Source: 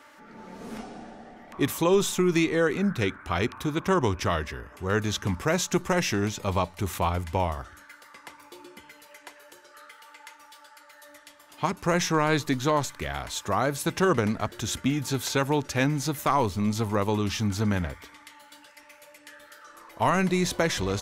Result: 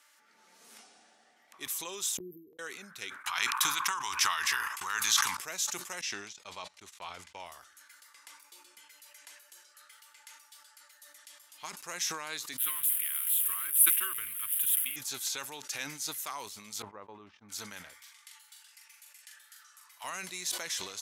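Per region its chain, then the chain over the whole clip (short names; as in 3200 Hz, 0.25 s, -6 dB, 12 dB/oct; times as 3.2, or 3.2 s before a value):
2.17–2.59 brick-wall FIR band-stop 500–12000 Hz + flipped gate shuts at -23 dBFS, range -35 dB
3.24–5.37 gate -43 dBFS, range -27 dB + resonant low shelf 740 Hz -9.5 dB, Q 3 + fast leveller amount 100%
6.01–7.46 LPF 6000 Hz + gate -33 dBFS, range -39 dB
12.58–14.96 switching spikes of -24.5 dBFS + EQ curve 110 Hz 0 dB, 190 Hz -16 dB, 340 Hz -6 dB, 670 Hz -28 dB, 1100 Hz -2 dB, 1600 Hz 0 dB, 3100 Hz +4 dB, 4500 Hz -20 dB, 6600 Hz -22 dB, 10000 Hz +8 dB
16.82–17.49 gate -28 dBFS, range -35 dB + LPF 1100 Hz
18.02–20.04 HPF 870 Hz 24 dB/oct + doubler 43 ms -4.5 dB
whole clip: Bessel low-pass 12000 Hz, order 2; differentiator; sustainer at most 68 dB/s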